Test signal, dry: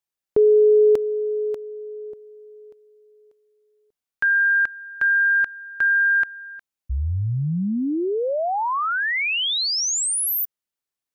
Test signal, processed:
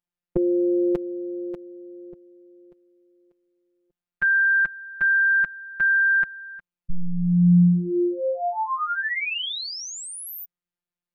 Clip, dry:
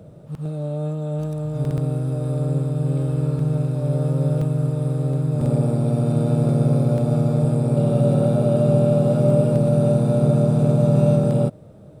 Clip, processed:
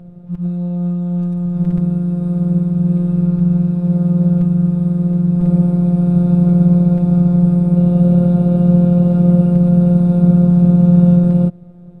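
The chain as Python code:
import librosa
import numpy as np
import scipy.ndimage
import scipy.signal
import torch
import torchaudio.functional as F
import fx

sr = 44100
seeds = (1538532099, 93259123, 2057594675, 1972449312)

y = fx.robotise(x, sr, hz=176.0)
y = fx.bass_treble(y, sr, bass_db=12, treble_db=-11)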